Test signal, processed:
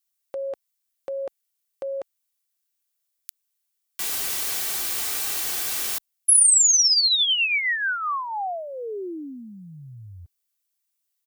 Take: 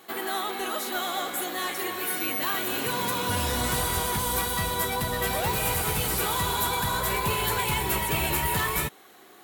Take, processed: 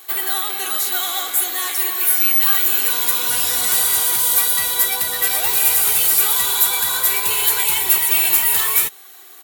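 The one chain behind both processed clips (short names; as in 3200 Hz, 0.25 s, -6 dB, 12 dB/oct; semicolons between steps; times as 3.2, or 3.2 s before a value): tilt +4 dB/oct; comb 2.6 ms, depth 35%; in parallel at -11.5 dB: soft clip -10 dBFS; on the sum: gain -1.5 dB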